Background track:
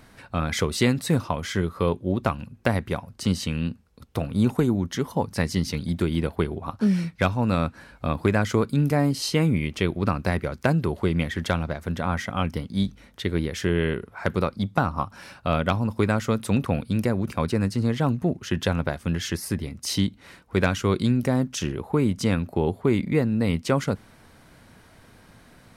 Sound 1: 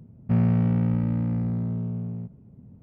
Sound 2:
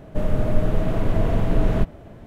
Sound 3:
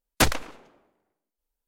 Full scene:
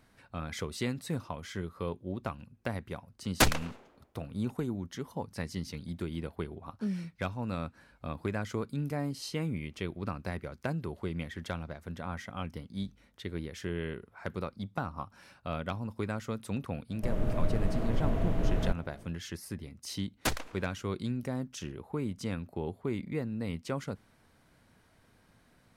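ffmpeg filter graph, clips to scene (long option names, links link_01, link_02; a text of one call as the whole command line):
ffmpeg -i bed.wav -i cue0.wav -i cue1.wav -i cue2.wav -filter_complex "[3:a]asplit=2[link_01][link_02];[0:a]volume=-12.5dB[link_03];[link_01]atrim=end=1.67,asetpts=PTS-STARTPTS,volume=-3.5dB,afade=type=in:duration=0.004:curve=hsin,afade=type=out:start_time=1.666:duration=0.004:curve=hsin,adelay=3200[link_04];[2:a]atrim=end=2.26,asetpts=PTS-STARTPTS,volume=-9.5dB,afade=type=in:duration=0.05,afade=type=out:start_time=2.21:duration=0.05,adelay=16880[link_05];[link_02]atrim=end=1.67,asetpts=PTS-STARTPTS,volume=-10.5dB,afade=type=in:duration=0.004:curve=hsin,afade=type=out:start_time=1.666:duration=0.004:curve=hsin,adelay=20050[link_06];[link_03][link_04][link_05][link_06]amix=inputs=4:normalize=0" out.wav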